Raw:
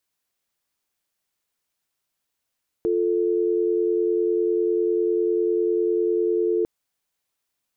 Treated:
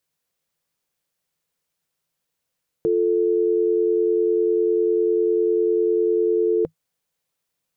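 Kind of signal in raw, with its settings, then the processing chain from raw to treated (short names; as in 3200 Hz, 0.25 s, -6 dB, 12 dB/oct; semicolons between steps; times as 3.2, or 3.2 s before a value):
call progress tone dial tone, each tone -21.5 dBFS 3.80 s
thirty-one-band EQ 100 Hz +4 dB, 160 Hz +11 dB, 500 Hz +7 dB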